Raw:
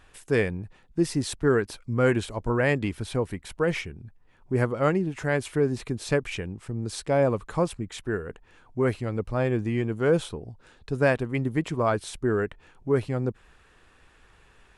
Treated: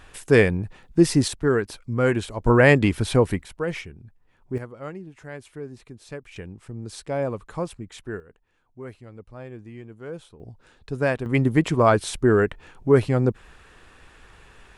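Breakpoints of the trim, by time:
+7.5 dB
from 1.28 s +1 dB
from 2.45 s +8.5 dB
from 3.44 s -2.5 dB
from 4.58 s -12.5 dB
from 6.36 s -4 dB
from 8.20 s -14 dB
from 10.40 s -1 dB
from 11.26 s +7 dB

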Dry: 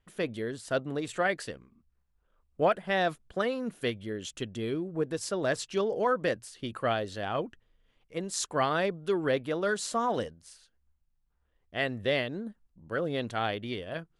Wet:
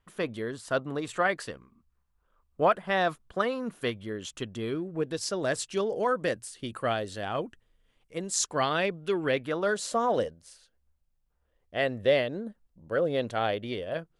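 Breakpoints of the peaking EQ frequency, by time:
peaking EQ +7 dB 0.68 oct
4.68 s 1.1 kHz
5.46 s 8.8 kHz
8.26 s 8.8 kHz
8.84 s 2.5 kHz
9.34 s 2.5 kHz
9.77 s 550 Hz

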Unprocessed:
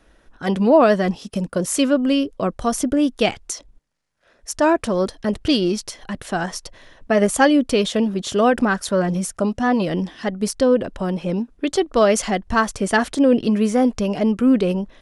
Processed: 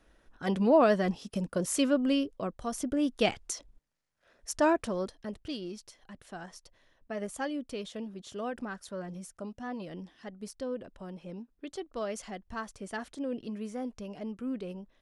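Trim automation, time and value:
2.15 s -9 dB
2.61 s -15 dB
3.26 s -8 dB
4.63 s -8 dB
5.47 s -20 dB

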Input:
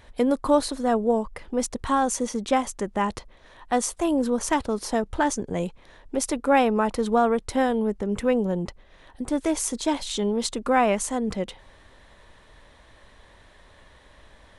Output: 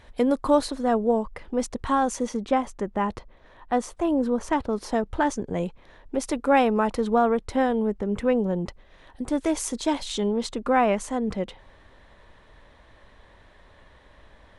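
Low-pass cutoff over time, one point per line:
low-pass 6 dB/octave
7 kHz
from 0.67 s 3.9 kHz
from 2.37 s 1.7 kHz
from 4.73 s 3.2 kHz
from 6.27 s 6.4 kHz
from 7.00 s 3 kHz
from 8.66 s 6.9 kHz
from 10.28 s 2.9 kHz

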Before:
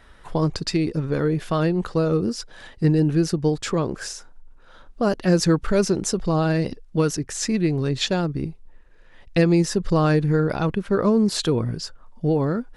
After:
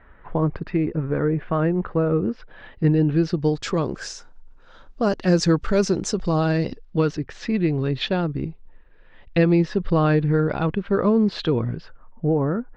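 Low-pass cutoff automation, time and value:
low-pass 24 dB/octave
2.03 s 2.2 kHz
3.13 s 3.7 kHz
3.69 s 6.8 kHz
6.35 s 6.8 kHz
7.28 s 3.7 kHz
11.63 s 3.7 kHz
12.25 s 1.8 kHz

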